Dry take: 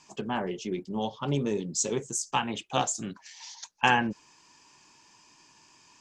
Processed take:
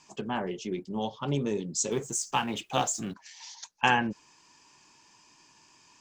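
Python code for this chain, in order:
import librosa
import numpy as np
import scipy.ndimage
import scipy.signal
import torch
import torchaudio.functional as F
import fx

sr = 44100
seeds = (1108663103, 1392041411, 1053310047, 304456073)

y = fx.law_mismatch(x, sr, coded='mu', at=(1.91, 3.14))
y = y * librosa.db_to_amplitude(-1.0)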